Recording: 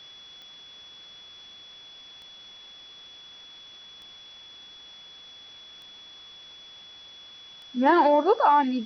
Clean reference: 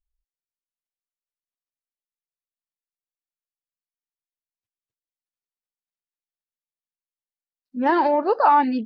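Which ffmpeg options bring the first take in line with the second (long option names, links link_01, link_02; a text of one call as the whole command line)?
ffmpeg -i in.wav -af "adeclick=threshold=4,bandreject=frequency=3400:width=30,afwtdn=0.0032,asetnsamples=nb_out_samples=441:pad=0,asendcmd='8.39 volume volume 3.5dB',volume=0dB" out.wav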